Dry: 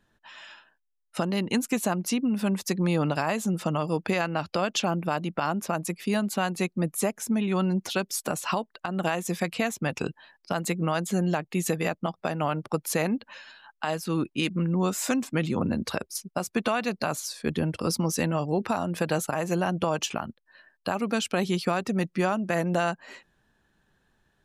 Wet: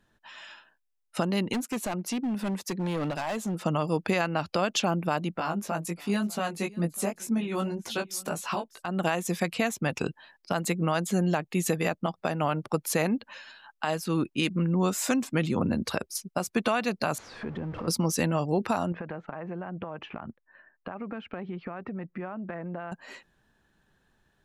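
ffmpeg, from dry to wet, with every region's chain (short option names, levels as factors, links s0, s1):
-filter_complex "[0:a]asettb=1/sr,asplit=3[s0][s1][s2];[s0]atrim=end=1.534[s3];[s1]atrim=start=1.53:end=3.65,asetpts=PTS-STARTPTS,afade=t=in:d=0.004:c=qsin,afade=t=out:st=2.116:d=0.004:c=qsin,highpass=f=200:p=1,highshelf=f=2200:g=-5,volume=20,asoftclip=hard,volume=0.0501[s4];[s2]atrim=start=3.646[s5];[s3][s4]acrossfade=d=0.004:c1=hsin:c2=qsin[s6];[s6][s5]acrossfade=d=0.004:c1=qsin:c2=hsin,asettb=1/sr,asplit=3[s7][s8][s9];[s7]atrim=end=5.374[s10];[s8]atrim=start=5.37:end=8.86,asetpts=PTS-STARTPTS,afade=t=in:d=0.004:c=qsin,afade=t=out:st=3.486:d=0.004:c=qsin,flanger=delay=17.5:depth=2.3:speed=2,aecho=1:1:597:0.075,atrim=end_sample=153909[s11];[s9]atrim=start=8.856[s12];[s10][s11]acrossfade=d=0.004:c1=hsin:c2=qsin[s13];[s13][s12]acrossfade=d=0.004:c1=qsin:c2=hsin,asettb=1/sr,asplit=3[s14][s15][s16];[s14]atrim=end=17.184[s17];[s15]atrim=start=17.18:end=17.88,asetpts=PTS-STARTPTS,afade=t=in:d=0.004:c=qsin,afade=t=out:st=0.696:d=0.004:c=qsin,aeval=exprs='val(0)+0.5*0.0335*sgn(val(0))':c=same,lowpass=1600,acompressor=threshold=0.02:ratio=3:attack=3.2:release=140:knee=1:detection=peak[s18];[s16]atrim=start=17.876[s19];[s17][s18]acrossfade=d=0.004:c1=hsin:c2=qsin[s20];[s20][s19]acrossfade=d=0.004:c1=qsin:c2=hsin,asettb=1/sr,asplit=3[s21][s22][s23];[s21]atrim=end=18.924[s24];[s22]atrim=start=18.92:end=22.92,asetpts=PTS-STARTPTS,afade=t=in:d=0.004:c=qsin,afade=t=out:st=3.996:d=0.004:c=qsin,lowpass=f=2100:w=0.5412,lowpass=f=2100:w=1.3066,acompressor=threshold=0.0224:ratio=5:attack=3.2:release=140:knee=1:detection=peak[s25];[s23]atrim=start=22.916[s26];[s24][s25]acrossfade=d=0.004:c1=hsin:c2=qsin[s27];[s27][s26]acrossfade=d=0.004:c1=qsin:c2=hsin"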